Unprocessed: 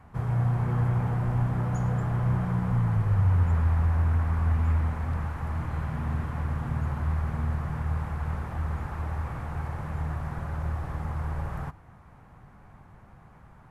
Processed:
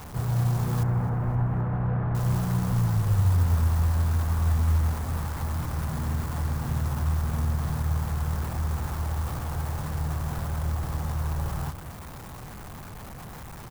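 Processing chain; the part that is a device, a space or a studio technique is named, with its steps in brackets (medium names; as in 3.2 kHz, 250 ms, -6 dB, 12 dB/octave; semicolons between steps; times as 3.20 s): early CD player with a faulty converter (jump at every zero crossing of -37 dBFS; sampling jitter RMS 0.069 ms); 0.83–2.15 s: low-pass 2 kHz 24 dB/octave; feedback delay 261 ms, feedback 51%, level -17.5 dB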